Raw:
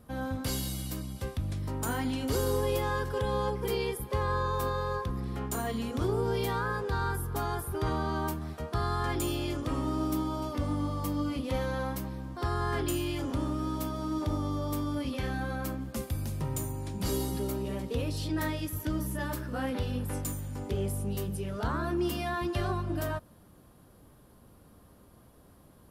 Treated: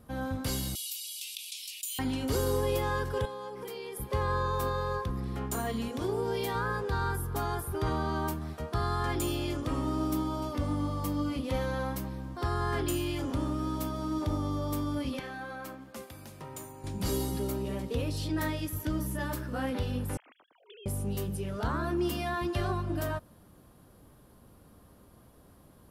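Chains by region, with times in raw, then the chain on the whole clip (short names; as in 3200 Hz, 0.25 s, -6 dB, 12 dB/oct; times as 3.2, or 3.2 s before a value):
0.75–1.99 steep high-pass 2500 Hz 72 dB/oct + fast leveller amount 70%
3.25–3.97 HPF 240 Hz + notches 50/100/150/200/250/300/350/400/450 Hz + compressor 12:1, threshold -36 dBFS
5.88–6.55 low shelf 130 Hz -11.5 dB + notch 1300 Hz, Q 6.1
15.19–16.84 HPF 710 Hz 6 dB/oct + high shelf 3400 Hz -8 dB
20.17–20.86 sine-wave speech + differentiator
whole clip: dry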